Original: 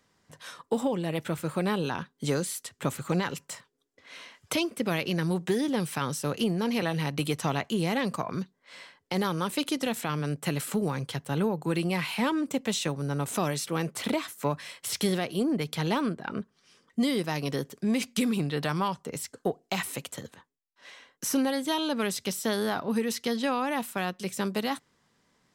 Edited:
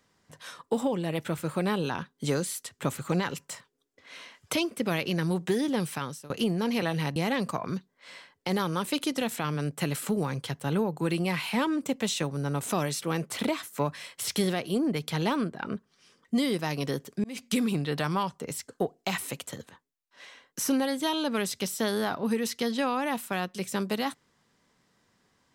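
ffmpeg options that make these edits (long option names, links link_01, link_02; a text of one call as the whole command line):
ffmpeg -i in.wav -filter_complex "[0:a]asplit=4[link_01][link_02][link_03][link_04];[link_01]atrim=end=6.3,asetpts=PTS-STARTPTS,afade=type=out:start_time=5.86:duration=0.44:silence=0.0707946[link_05];[link_02]atrim=start=6.3:end=7.162,asetpts=PTS-STARTPTS,afade=type=in:duration=0.004:curve=hsin:silence=0.0707946[link_06];[link_03]atrim=start=7.808:end=17.89,asetpts=PTS-STARTPTS,afade=type=out:start_time=10.078:duration=0.004:curve=hsin[link_07];[link_04]atrim=start=17.89,asetpts=PTS-STARTPTS,afade=type=in:duration=0.28[link_08];[link_05][link_06]concat=n=2:v=0:a=1[link_09];[link_07][link_08]concat=n=2:v=0:a=1[link_10];[link_09][link_10]acrossfade=duration=0.004:curve1=hsin:curve2=hsin" out.wav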